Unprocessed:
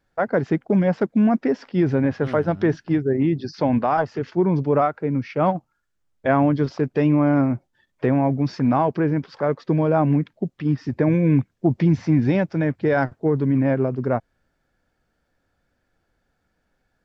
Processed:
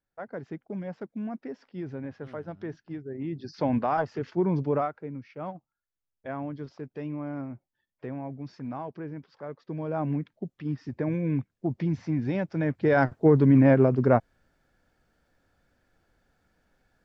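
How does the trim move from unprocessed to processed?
3.10 s -17 dB
3.63 s -6 dB
4.68 s -6 dB
5.23 s -17 dB
9.62 s -17 dB
10.05 s -10 dB
12.25 s -10 dB
13.25 s +1.5 dB

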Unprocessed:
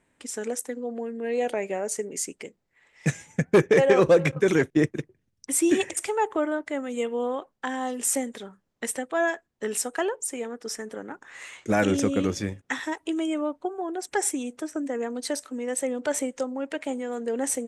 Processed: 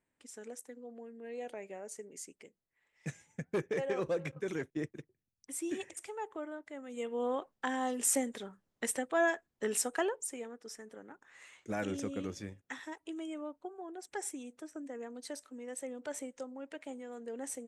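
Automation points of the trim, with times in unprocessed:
6.76 s -16 dB
7.33 s -4.5 dB
9.93 s -4.5 dB
10.70 s -14 dB

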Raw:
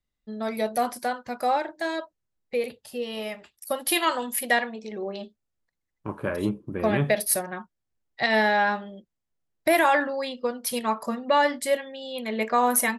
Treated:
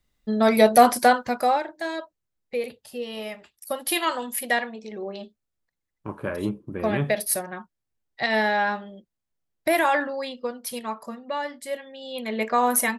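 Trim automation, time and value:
1.15 s +11 dB
1.65 s -1 dB
10.26 s -1 dB
11.55 s -10 dB
12.15 s +0.5 dB

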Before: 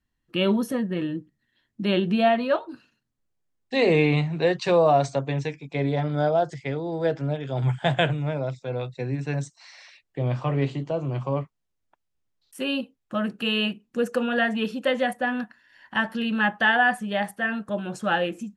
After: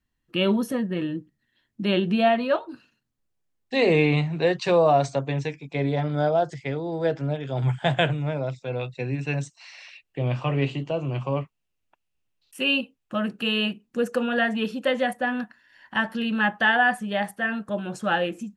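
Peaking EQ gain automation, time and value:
peaking EQ 2.7 kHz 0.36 oct
8.32 s +1.5 dB
8.87 s +10.5 dB
12.69 s +10.5 dB
13.53 s 0 dB

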